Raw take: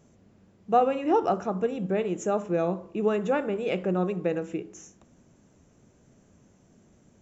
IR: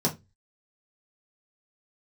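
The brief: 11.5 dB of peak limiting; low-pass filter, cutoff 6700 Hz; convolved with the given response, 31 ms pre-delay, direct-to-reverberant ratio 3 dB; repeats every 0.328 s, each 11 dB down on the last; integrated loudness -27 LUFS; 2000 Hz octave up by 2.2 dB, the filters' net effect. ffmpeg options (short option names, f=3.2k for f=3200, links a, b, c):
-filter_complex "[0:a]lowpass=6.7k,equalizer=f=2k:t=o:g=3,alimiter=limit=-21dB:level=0:latency=1,aecho=1:1:328|656|984:0.282|0.0789|0.0221,asplit=2[a][b];[1:a]atrim=start_sample=2205,adelay=31[c];[b][c]afir=irnorm=-1:irlink=0,volume=-13dB[d];[a][d]amix=inputs=2:normalize=0,volume=-2dB"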